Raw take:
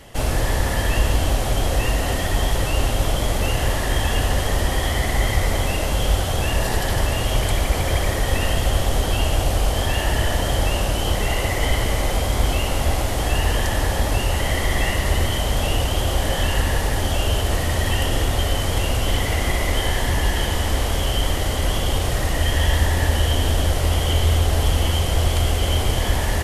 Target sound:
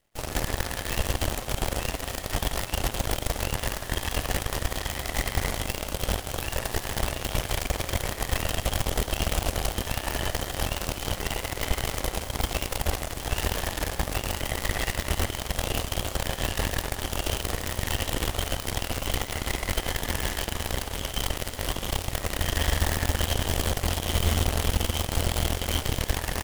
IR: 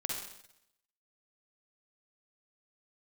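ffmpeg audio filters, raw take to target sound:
-af "bandreject=frequency=50:width_type=h:width=6,bandreject=frequency=100:width_type=h:width=6,bandreject=frequency=150:width_type=h:width=6,bandreject=frequency=200:width_type=h:width=6,bandreject=frequency=250:width_type=h:width=6,acrusher=bits=5:dc=4:mix=0:aa=0.000001,aeval=exprs='0.531*(cos(1*acos(clip(val(0)/0.531,-1,1)))-cos(1*PI/2))+0.0841*(cos(7*acos(clip(val(0)/0.531,-1,1)))-cos(7*PI/2))':channel_layout=same,volume=-6dB"

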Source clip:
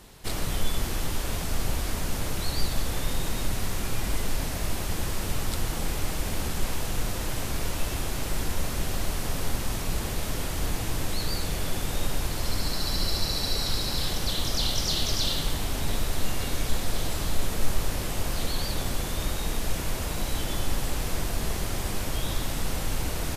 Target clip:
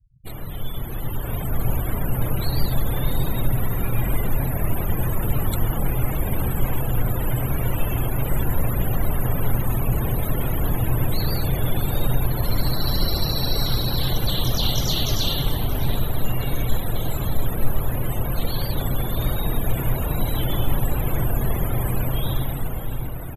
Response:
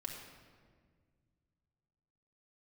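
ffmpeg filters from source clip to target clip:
-filter_complex "[0:a]equalizer=frequency=125:width_type=o:width=0.33:gain=11,equalizer=frequency=5000:width_type=o:width=0.33:gain=-9,equalizer=frequency=12500:width_type=o:width=0.33:gain=8,afftfilt=real='re*gte(hypot(re,im),0.0224)':imag='im*gte(hypot(re,im),0.0224)':win_size=1024:overlap=0.75,dynaudnorm=framelen=220:gausssize=11:maxgain=11.5dB,asplit=2[link_01][link_02];[link_02]adelay=628,lowpass=frequency=2200:poles=1,volume=-11dB,asplit=2[link_03][link_04];[link_04]adelay=628,lowpass=frequency=2200:poles=1,volume=0.25,asplit=2[link_05][link_06];[link_06]adelay=628,lowpass=frequency=2200:poles=1,volume=0.25[link_07];[link_03][link_05][link_07]amix=inputs=3:normalize=0[link_08];[link_01][link_08]amix=inputs=2:normalize=0,volume=-4.5dB"

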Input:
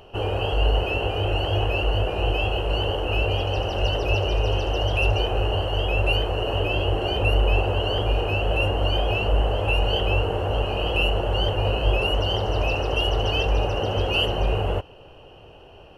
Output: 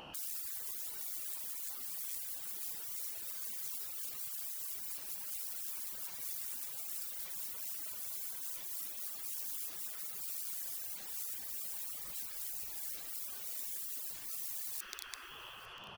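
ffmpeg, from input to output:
ffmpeg -i in.wav -filter_complex "[0:a]asplit=2[link_01][link_02];[link_02]asplit=5[link_03][link_04][link_05][link_06][link_07];[link_03]adelay=491,afreqshift=78,volume=-12.5dB[link_08];[link_04]adelay=982,afreqshift=156,volume=-18.9dB[link_09];[link_05]adelay=1473,afreqshift=234,volume=-25.3dB[link_10];[link_06]adelay=1964,afreqshift=312,volume=-31.6dB[link_11];[link_07]adelay=2455,afreqshift=390,volume=-38dB[link_12];[link_08][link_09][link_10][link_11][link_12]amix=inputs=5:normalize=0[link_13];[link_01][link_13]amix=inputs=2:normalize=0,aeval=exprs='(mod(15*val(0)+1,2)-1)/15':channel_layout=same,asettb=1/sr,asplit=3[link_14][link_15][link_16];[link_14]atrim=end=11.844[link_17];[link_15]atrim=start=11.84:end=13.06,asetpts=PTS-STARTPTS,afade=type=in:duration=0.004:curve=qsin,afade=type=out:start_time=1.216:duration=0.004:curve=qsin,highpass=62[link_18];[link_16]atrim=start=13.056[link_19];[link_17][link_18]acrossfade=duration=0.004:curve1=hsin:curve2=qsin[link_20];[link_20][link_19]acrossfade=duration=0.004:curve1=qsin:curve2=hsin,afftfilt=real='re*lt(hypot(re,im),0.0141)':imag='im*lt(hypot(re,im),0.0141)':win_size=1024:overlap=0.75,asplit=2[link_21][link_22];[link_22]aecho=0:1:849:0.0841[link_23];[link_21][link_23]amix=inputs=2:normalize=0,volume=1.5dB" out.wav

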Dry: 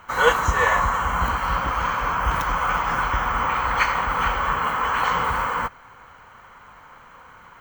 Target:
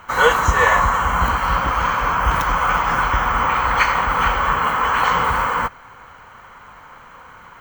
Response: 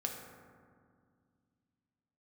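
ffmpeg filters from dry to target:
-af "alimiter=level_in=5.5dB:limit=-1dB:release=50:level=0:latency=1,volume=-1dB"

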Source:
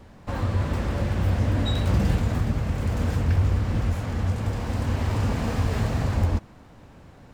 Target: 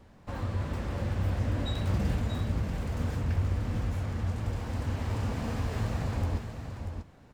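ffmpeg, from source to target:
ffmpeg -i in.wav -af "aecho=1:1:637:0.422,volume=-7.5dB" out.wav

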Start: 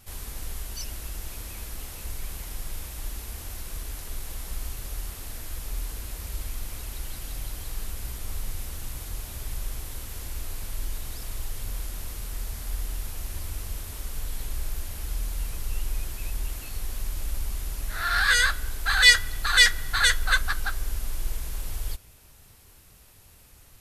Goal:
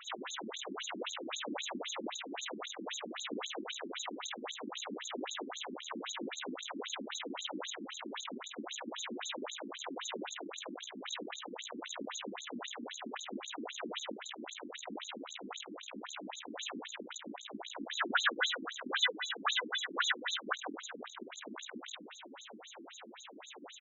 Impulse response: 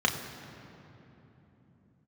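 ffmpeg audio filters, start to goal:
-filter_complex "[0:a]acompressor=threshold=-30dB:ratio=6,asoftclip=type=hard:threshold=-37.5dB,asuperstop=centerf=5000:order=20:qfactor=2.2,aecho=1:1:170:0.422,asplit=2[link_01][link_02];[1:a]atrim=start_sample=2205,lowpass=5200[link_03];[link_02][link_03]afir=irnorm=-1:irlink=0,volume=-21dB[link_04];[link_01][link_04]amix=inputs=2:normalize=0,afftfilt=real='re*between(b*sr/1024,250*pow(5200/250,0.5+0.5*sin(2*PI*3.8*pts/sr))/1.41,250*pow(5200/250,0.5+0.5*sin(2*PI*3.8*pts/sr))*1.41)':imag='im*between(b*sr/1024,250*pow(5200/250,0.5+0.5*sin(2*PI*3.8*pts/sr))/1.41,250*pow(5200/250,0.5+0.5*sin(2*PI*3.8*pts/sr))*1.41)':win_size=1024:overlap=0.75,volume=17dB"

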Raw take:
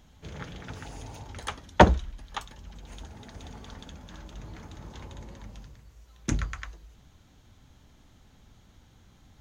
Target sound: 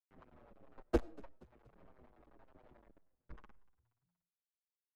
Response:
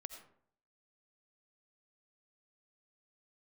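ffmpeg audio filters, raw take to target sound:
-filter_complex "[0:a]aemphasis=mode=reproduction:type=75fm,bandreject=frequency=60:width_type=h:width=6,bandreject=frequency=120:width_type=h:width=6,bandreject=frequency=180:width_type=h:width=6,bandreject=frequency=240:width_type=h:width=6,bandreject=frequency=300:width_type=h:width=6,bandreject=frequency=360:width_type=h:width=6,bandreject=frequency=420:width_type=h:width=6,highpass=frequency=160:width_type=q:width=0.5412,highpass=frequency=160:width_type=q:width=1.307,lowpass=frequency=3000:width_type=q:width=0.5176,lowpass=frequency=3000:width_type=q:width=0.7071,lowpass=frequency=3000:width_type=q:width=1.932,afreqshift=-260,asplit=2[link_01][link_02];[link_02]acompressor=threshold=-49dB:ratio=10,volume=0.5dB[link_03];[link_01][link_03]amix=inputs=2:normalize=0,acrusher=bits=4:dc=4:mix=0:aa=0.000001,adynamicsmooth=sensitivity=1.5:basefreq=910,acrossover=split=540[link_04][link_05];[link_04]aeval=exprs='val(0)*(1-0.7/2+0.7/2*cos(2*PI*6*n/s))':channel_layout=same[link_06];[link_05]aeval=exprs='val(0)*(1-0.7/2-0.7/2*cos(2*PI*6*n/s))':channel_layout=same[link_07];[link_06][link_07]amix=inputs=2:normalize=0,atempo=1.9,equalizer=frequency=110:width_type=o:width=1.3:gain=-9,asplit=4[link_08][link_09][link_10][link_11];[link_09]adelay=237,afreqshift=-59,volume=-23dB[link_12];[link_10]adelay=474,afreqshift=-118,volume=-29dB[link_13];[link_11]adelay=711,afreqshift=-177,volume=-35dB[link_14];[link_08][link_12][link_13][link_14]amix=inputs=4:normalize=0,asplit=2[link_15][link_16];[1:a]atrim=start_sample=2205[link_17];[link_16][link_17]afir=irnorm=-1:irlink=0,volume=-10dB[link_18];[link_15][link_18]amix=inputs=2:normalize=0,asplit=2[link_19][link_20];[link_20]adelay=6.9,afreqshift=-1.7[link_21];[link_19][link_21]amix=inputs=2:normalize=1,volume=-8dB"

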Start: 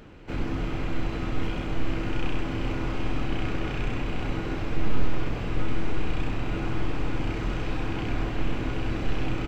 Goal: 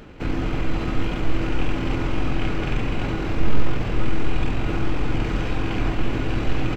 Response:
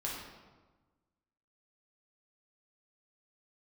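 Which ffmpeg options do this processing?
-af "atempo=1.4,volume=5.5dB"

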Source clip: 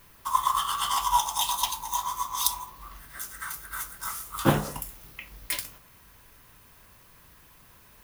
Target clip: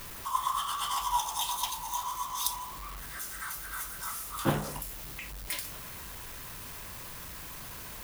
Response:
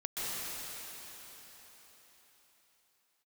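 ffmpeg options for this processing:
-af "aeval=exprs='val(0)+0.5*0.0282*sgn(val(0))':channel_layout=same,volume=-7dB"

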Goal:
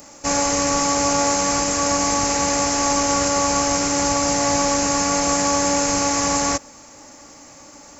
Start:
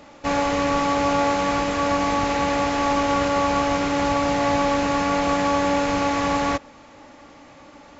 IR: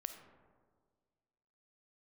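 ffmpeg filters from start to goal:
-af "aexciter=amount=8.4:drive=6.5:freq=5200"

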